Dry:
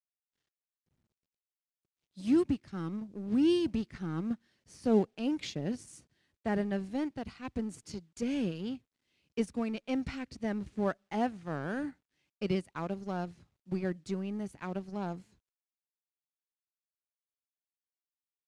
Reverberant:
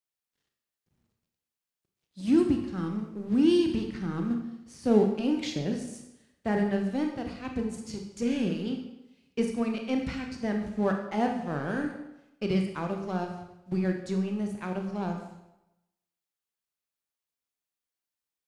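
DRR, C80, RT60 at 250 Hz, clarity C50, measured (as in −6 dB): 3.0 dB, 8.5 dB, 0.85 s, 5.5 dB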